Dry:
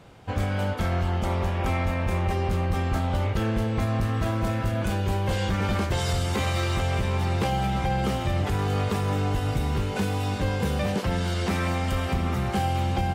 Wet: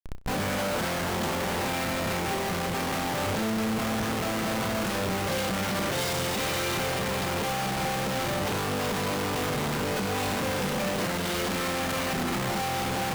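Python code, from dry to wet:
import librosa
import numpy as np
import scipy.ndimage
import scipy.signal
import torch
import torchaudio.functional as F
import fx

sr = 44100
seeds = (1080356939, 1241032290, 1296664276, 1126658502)

y = scipy.signal.sosfilt(scipy.signal.butter(4, 140.0, 'highpass', fs=sr, output='sos'), x)
y = fx.schmitt(y, sr, flips_db=-42.5)
y = fx.room_flutter(y, sr, wall_m=5.5, rt60_s=0.23)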